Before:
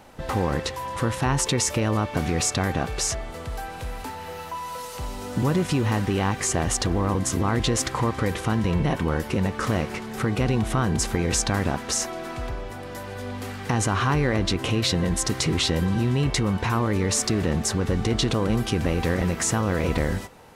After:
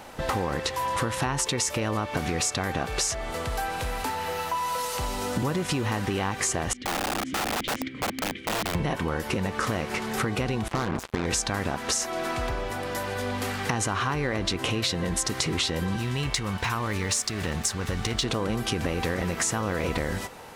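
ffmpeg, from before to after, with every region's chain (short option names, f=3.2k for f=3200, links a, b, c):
-filter_complex "[0:a]asettb=1/sr,asplit=3[a][b][c];[a]atrim=end=6.734[d];[b]atrim=start=6.73:end=8.75,asetpts=PTS-STARTPTS,afade=t=in:d=0.004:c=qsin,afade=t=out:st=2.016:d=0.004:c=qsin,asplit=3[e][f][g];[e]bandpass=f=270:t=q:w=8,volume=0dB[h];[f]bandpass=f=2.29k:t=q:w=8,volume=-6dB[i];[g]bandpass=f=3.01k:t=q:w=8,volume=-9dB[j];[h][i][j]amix=inputs=3:normalize=0,bass=f=250:g=11,treble=f=4k:g=-5,aeval=exprs='(mod(22.4*val(0)+1,2)-1)/22.4':c=same[k];[c]atrim=start=8.746[l];[d][k]acrossfade=d=0.004:c1=hsin:c2=qsin[m];[m][l]acrossfade=d=0.004:c1=qsin:c2=hsin,asettb=1/sr,asplit=3[n][o][p];[n]atrim=end=10.684[q];[o]atrim=start=10.68:end=11.26,asetpts=PTS-STARTPTS,afade=t=in:d=0.004:c=qsin,afade=t=out:st=0.576:d=0.004:c=qsin,lowpass=f=1.2k:p=1,lowshelf=f=81:g=-4.5,acrusher=bits=3:mix=0:aa=0.5[r];[p]atrim=start=11.256[s];[q][r]acrossfade=d=0.004:c1=hsin:c2=qsin[t];[t][s]acrossfade=d=0.004:c1=qsin:c2=hsin,asettb=1/sr,asplit=3[u][v][w];[u]atrim=end=15.964[x];[v]atrim=start=15.96:end=18.24,asetpts=PTS-STARTPTS,afade=t=in:d=0.004:c=qsin,afade=t=out:st=2.276:d=0.004:c=qsin,equalizer=f=370:w=0.49:g=-8,aeval=exprs='sgn(val(0))*max(abs(val(0))-0.00531,0)':c=same[y];[w]atrim=start=18.236[z];[x][y]acrossfade=d=0.004:c1=hsin:c2=qsin[aa];[aa][z]acrossfade=d=0.004:c1=qsin:c2=hsin,lowshelf=f=360:g=-6.5,acompressor=threshold=-31dB:ratio=6,volume=7dB"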